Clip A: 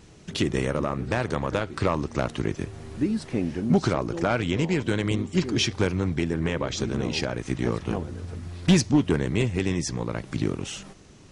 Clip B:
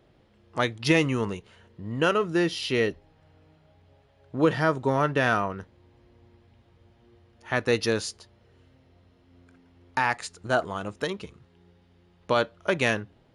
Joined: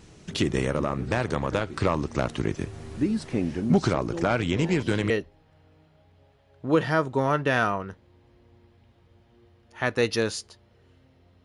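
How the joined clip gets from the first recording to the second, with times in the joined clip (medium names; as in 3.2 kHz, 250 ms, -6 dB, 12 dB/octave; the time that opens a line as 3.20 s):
clip A
4.58 s: add clip B from 2.28 s 0.52 s -17 dB
5.10 s: go over to clip B from 2.80 s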